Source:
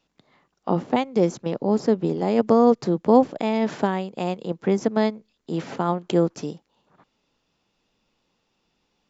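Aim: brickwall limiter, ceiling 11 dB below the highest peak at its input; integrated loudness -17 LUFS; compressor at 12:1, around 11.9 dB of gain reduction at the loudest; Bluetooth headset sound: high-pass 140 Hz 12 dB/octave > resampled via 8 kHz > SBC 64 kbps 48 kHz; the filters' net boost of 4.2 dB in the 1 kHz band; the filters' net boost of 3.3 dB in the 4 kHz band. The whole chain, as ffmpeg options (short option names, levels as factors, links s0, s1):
-af "equalizer=f=1000:t=o:g=5.5,equalizer=f=4000:t=o:g=4,acompressor=threshold=0.112:ratio=12,alimiter=limit=0.126:level=0:latency=1,highpass=140,aresample=8000,aresample=44100,volume=5.01" -ar 48000 -c:a sbc -b:a 64k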